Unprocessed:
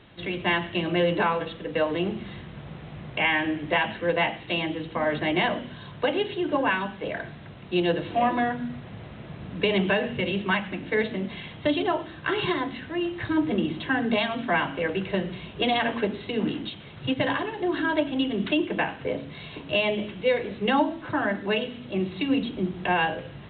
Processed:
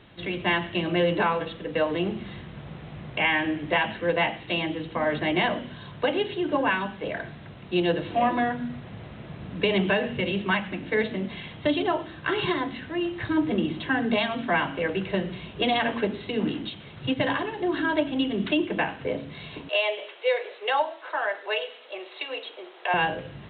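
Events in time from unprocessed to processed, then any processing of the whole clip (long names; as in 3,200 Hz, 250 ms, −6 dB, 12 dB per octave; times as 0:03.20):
0:19.69–0:22.94: Butterworth high-pass 460 Hz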